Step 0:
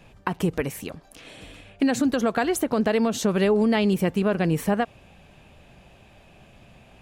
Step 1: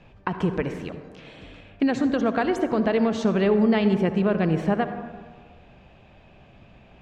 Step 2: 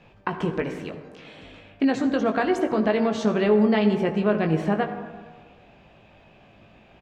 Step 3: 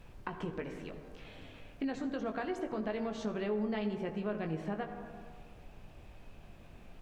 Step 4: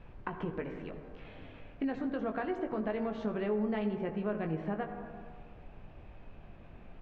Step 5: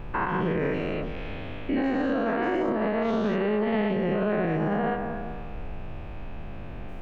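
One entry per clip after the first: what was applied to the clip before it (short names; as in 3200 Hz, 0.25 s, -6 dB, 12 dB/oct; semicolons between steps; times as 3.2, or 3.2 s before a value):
air absorption 160 m; on a send at -8.5 dB: reverb RT60 1.5 s, pre-delay 53 ms
low shelf 110 Hz -9 dB; doubler 19 ms -6.5 dB
added noise brown -43 dBFS; compressor 1.5:1, threshold -36 dBFS, peak gain reduction 8 dB; gain -8 dB
LPF 2400 Hz 12 dB/oct; gain +2 dB
spectral dilation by 0.24 s; limiter -26 dBFS, peak gain reduction 9 dB; gain +8 dB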